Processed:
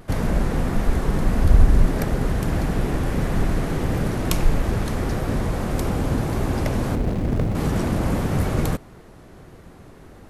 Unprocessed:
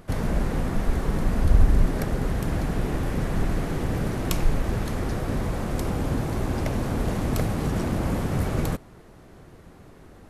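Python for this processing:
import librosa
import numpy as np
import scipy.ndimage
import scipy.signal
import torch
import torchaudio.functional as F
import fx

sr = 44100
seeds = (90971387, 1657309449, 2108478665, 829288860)

y = fx.median_filter(x, sr, points=41, at=(6.95, 7.55))
y = fx.vibrato(y, sr, rate_hz=1.6, depth_cents=41.0)
y = y * librosa.db_to_amplitude(3.5)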